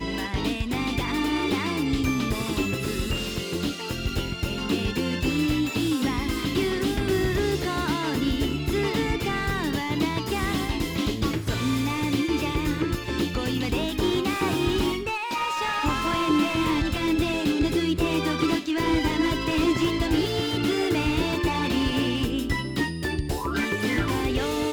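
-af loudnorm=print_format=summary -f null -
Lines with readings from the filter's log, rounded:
Input Integrated:    -25.5 LUFS
Input True Peak:     -10.5 dBTP
Input LRA:             2.6 LU
Input Threshold:     -35.5 LUFS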